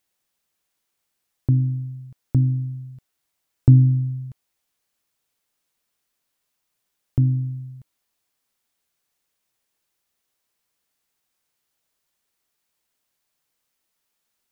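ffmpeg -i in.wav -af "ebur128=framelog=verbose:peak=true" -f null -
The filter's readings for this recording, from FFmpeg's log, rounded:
Integrated loudness:
  I:         -21.0 LUFS
  Threshold: -32.5 LUFS
Loudness range:
  LRA:         9.5 LU
  Threshold: -45.7 LUFS
  LRA low:   -31.4 LUFS
  LRA high:  -21.9 LUFS
True peak:
  Peak:       -3.3 dBFS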